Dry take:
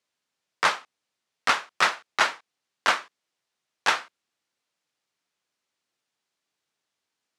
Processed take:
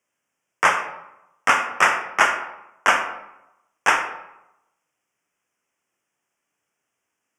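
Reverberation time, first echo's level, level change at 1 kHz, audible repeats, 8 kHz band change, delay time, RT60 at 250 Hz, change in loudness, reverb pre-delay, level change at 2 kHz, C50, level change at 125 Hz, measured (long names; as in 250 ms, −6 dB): 0.90 s, no echo audible, +6.0 dB, no echo audible, +4.5 dB, no echo audible, 0.90 s, +4.5 dB, 27 ms, +6.0 dB, 7.5 dB, can't be measured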